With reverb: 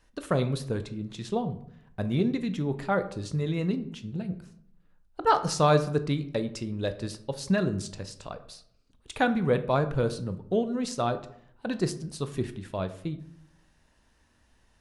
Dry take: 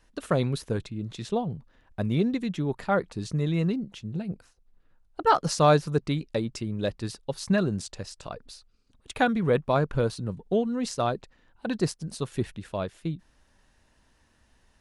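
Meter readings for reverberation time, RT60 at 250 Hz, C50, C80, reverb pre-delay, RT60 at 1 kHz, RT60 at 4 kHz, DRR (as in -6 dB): 0.70 s, 0.85 s, 14.0 dB, 17.0 dB, 14 ms, 0.65 s, 0.40 s, 10.0 dB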